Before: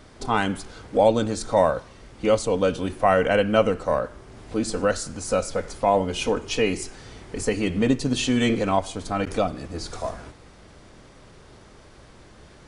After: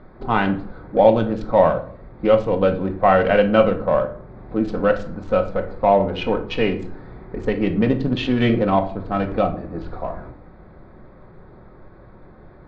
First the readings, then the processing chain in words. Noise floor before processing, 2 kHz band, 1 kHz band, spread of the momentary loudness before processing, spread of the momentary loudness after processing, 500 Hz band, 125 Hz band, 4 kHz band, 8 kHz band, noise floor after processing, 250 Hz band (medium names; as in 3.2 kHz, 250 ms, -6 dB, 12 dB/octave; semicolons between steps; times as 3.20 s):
-49 dBFS, +2.0 dB, +4.0 dB, 13 LU, 15 LU, +4.0 dB, +5.0 dB, -2.0 dB, under -20 dB, -45 dBFS, +4.0 dB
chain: local Wiener filter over 15 samples; low-pass 3.6 kHz 24 dB/octave; simulated room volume 520 m³, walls furnished, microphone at 1 m; trim +3 dB